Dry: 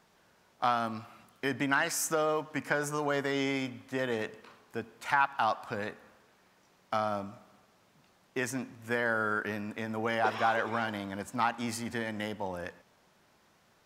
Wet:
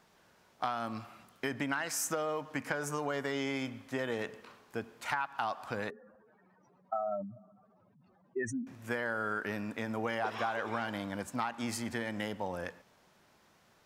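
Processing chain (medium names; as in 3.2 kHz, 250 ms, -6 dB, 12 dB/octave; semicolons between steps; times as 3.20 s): 5.90–8.67 s: spectral contrast enhancement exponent 3; compression 6:1, threshold -30 dBFS, peak gain reduction 9 dB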